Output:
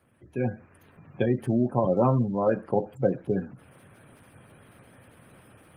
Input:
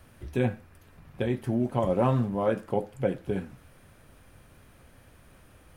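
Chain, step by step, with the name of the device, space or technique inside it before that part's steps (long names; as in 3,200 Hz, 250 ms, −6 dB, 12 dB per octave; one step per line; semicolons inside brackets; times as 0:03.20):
noise-suppressed video call (high-pass filter 100 Hz 24 dB per octave; gate on every frequency bin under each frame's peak −25 dB strong; automatic gain control gain up to 13 dB; level −7.5 dB; Opus 24 kbit/s 48,000 Hz)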